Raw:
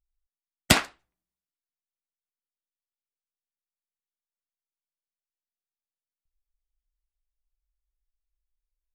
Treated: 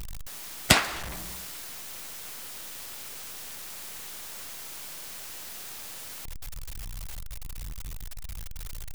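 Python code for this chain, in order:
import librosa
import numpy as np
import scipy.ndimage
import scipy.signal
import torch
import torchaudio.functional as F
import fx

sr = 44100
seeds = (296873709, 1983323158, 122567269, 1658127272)

y = x + 0.5 * 10.0 ** (-29.0 / 20.0) * np.sign(x)
y = fx.dynamic_eq(y, sr, hz=260.0, q=1.1, threshold_db=-56.0, ratio=4.0, max_db=-4)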